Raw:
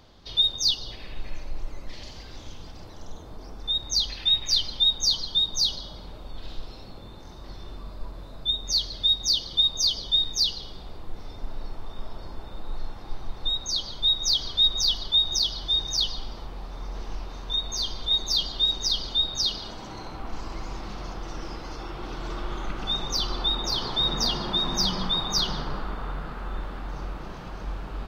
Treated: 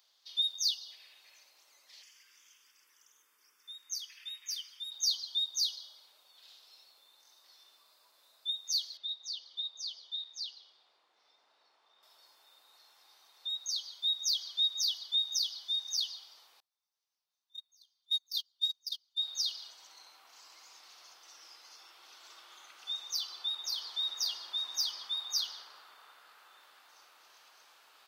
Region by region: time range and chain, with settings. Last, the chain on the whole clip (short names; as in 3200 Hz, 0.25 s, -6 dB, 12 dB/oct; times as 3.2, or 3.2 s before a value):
2.02–4.92 bell 3400 Hz +5.5 dB 1.7 oct + fixed phaser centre 1700 Hz, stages 4
8.97–12.03 tape spacing loss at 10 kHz 20 dB + Doppler distortion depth 0.12 ms
16.6–19.18 gate -23 dBFS, range -34 dB + high shelf 7300 Hz +11 dB
whole clip: HPF 490 Hz 12 dB/oct; differentiator; gain -3.5 dB